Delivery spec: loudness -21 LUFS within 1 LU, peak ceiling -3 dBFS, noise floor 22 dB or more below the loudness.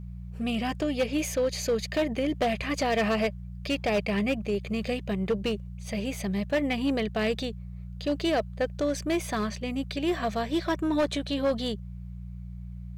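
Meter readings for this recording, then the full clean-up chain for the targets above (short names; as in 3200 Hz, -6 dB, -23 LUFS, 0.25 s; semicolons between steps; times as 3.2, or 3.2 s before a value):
clipped 1.5%; flat tops at -20.0 dBFS; hum 60 Hz; harmonics up to 180 Hz; hum level -37 dBFS; loudness -29.0 LUFS; peak -20.0 dBFS; loudness target -21.0 LUFS
-> clip repair -20 dBFS; de-hum 60 Hz, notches 3; gain +8 dB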